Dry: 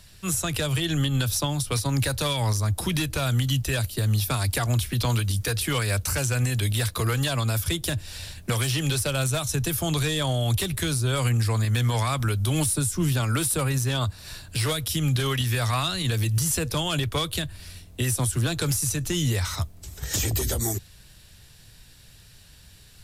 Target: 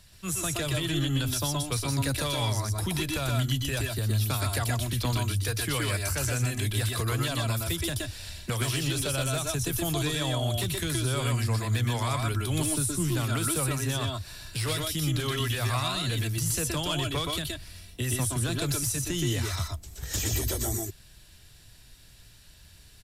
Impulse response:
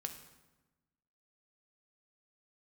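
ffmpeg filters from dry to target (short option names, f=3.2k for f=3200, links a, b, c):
-af "aecho=1:1:121|124:0.596|0.596,volume=-5dB"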